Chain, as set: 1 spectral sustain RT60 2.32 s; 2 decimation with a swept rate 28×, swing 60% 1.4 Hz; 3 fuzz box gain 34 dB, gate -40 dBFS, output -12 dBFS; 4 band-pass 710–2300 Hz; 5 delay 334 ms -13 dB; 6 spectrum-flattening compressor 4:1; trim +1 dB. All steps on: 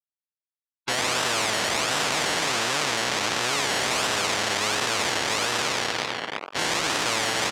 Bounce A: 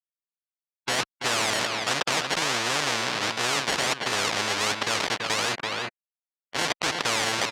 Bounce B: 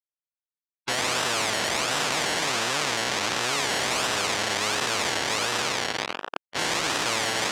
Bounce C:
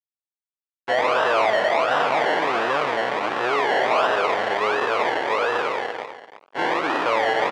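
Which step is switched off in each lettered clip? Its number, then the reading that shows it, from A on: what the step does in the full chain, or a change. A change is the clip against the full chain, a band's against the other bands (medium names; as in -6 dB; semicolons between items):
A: 1, loudness change -1.5 LU; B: 5, loudness change -1.0 LU; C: 6, 8 kHz band -21.0 dB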